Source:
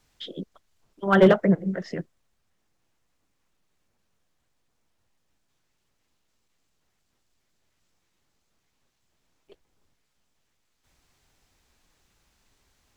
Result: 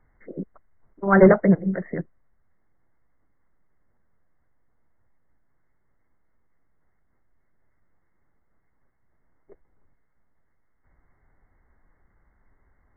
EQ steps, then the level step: brick-wall FIR low-pass 2200 Hz; low shelf 74 Hz +8 dB; +2.0 dB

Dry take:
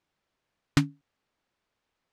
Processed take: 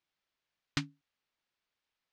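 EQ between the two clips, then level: air absorption 160 m; pre-emphasis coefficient 0.9; +7.0 dB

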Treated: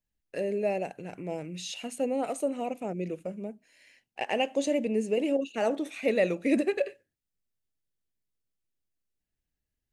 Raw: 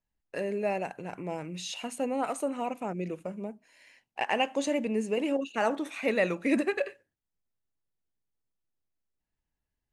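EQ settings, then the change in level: dynamic EQ 600 Hz, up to +5 dB, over -38 dBFS, Q 0.94; dynamic EQ 1500 Hz, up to -5 dB, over -46 dBFS, Q 2; bell 990 Hz -10 dB 0.84 oct; 0.0 dB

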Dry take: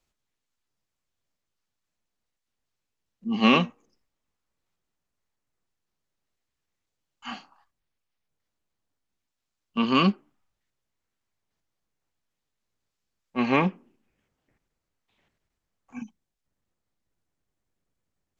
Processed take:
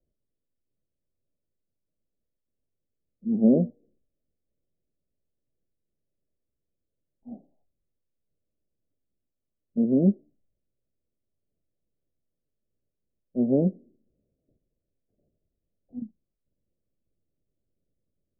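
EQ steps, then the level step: steep low-pass 640 Hz 72 dB/oct; +2.0 dB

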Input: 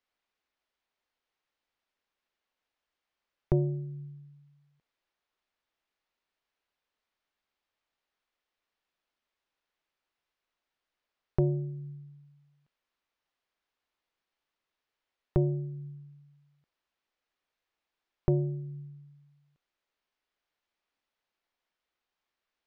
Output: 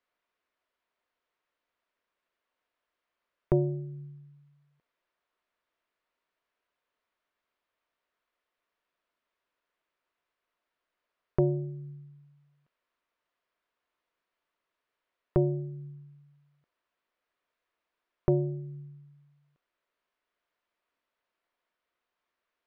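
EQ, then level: Butterworth band-stop 810 Hz, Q 7.7; LPF 1300 Hz 6 dB/oct; low shelf 290 Hz -10.5 dB; +7.5 dB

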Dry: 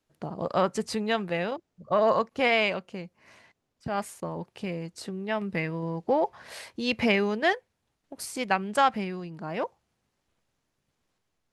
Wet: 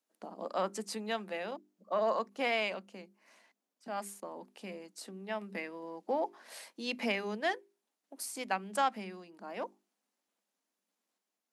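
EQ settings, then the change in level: rippled Chebyshev high-pass 190 Hz, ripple 3 dB; high shelf 5900 Hz +11 dB; notches 50/100/150/200/250/300/350/400 Hz; -7.5 dB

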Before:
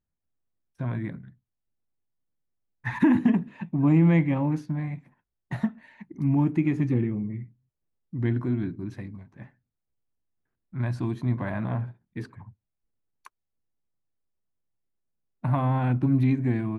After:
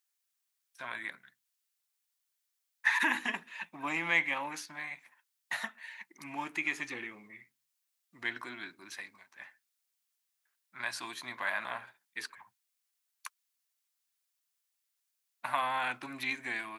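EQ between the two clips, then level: HPF 1300 Hz 12 dB/oct; high shelf 2700 Hz +9.5 dB; +5.0 dB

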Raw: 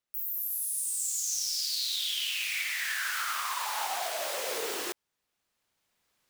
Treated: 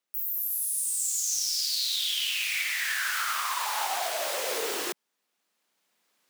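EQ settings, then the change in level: steep high-pass 180 Hz 36 dB/oct; +3.0 dB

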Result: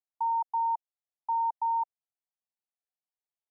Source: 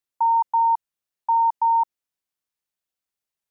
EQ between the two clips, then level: band-pass 740 Hz, Q 3.6; -4.0 dB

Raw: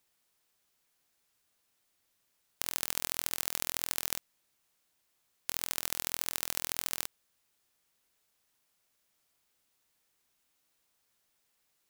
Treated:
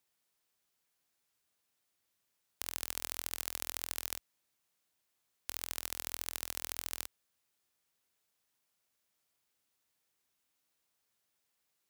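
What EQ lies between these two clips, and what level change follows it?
HPF 47 Hz; -5.0 dB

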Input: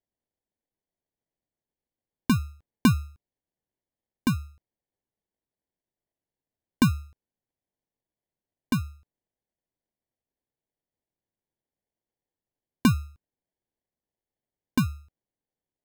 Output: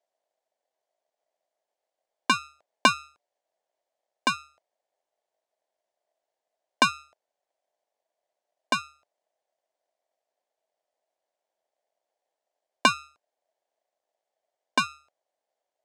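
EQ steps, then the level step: resonant high-pass 640 Hz, resonance Q 4.9; LPF 8600 Hz 24 dB/oct; dynamic EQ 2900 Hz, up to +5 dB, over -44 dBFS, Q 0.85; +5.0 dB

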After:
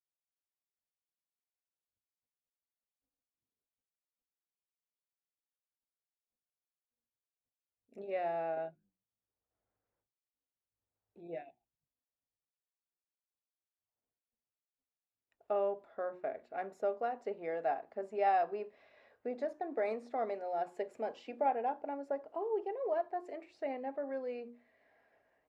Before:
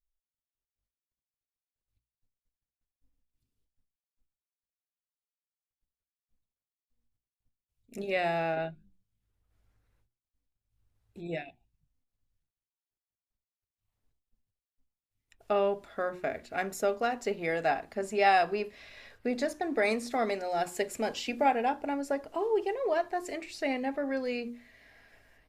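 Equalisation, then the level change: band-pass 620 Hz, Q 1.1; -4.5 dB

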